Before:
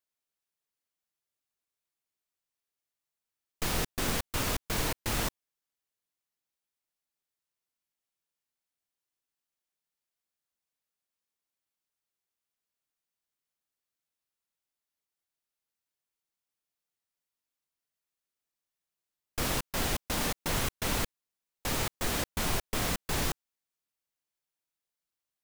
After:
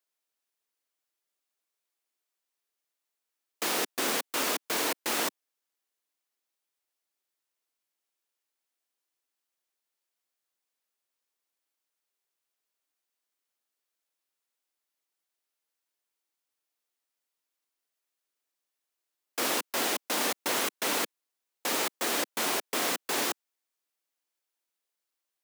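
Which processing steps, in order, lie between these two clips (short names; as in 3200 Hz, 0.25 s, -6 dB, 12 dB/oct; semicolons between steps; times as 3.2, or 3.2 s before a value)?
HPF 270 Hz 24 dB/oct; gain +3.5 dB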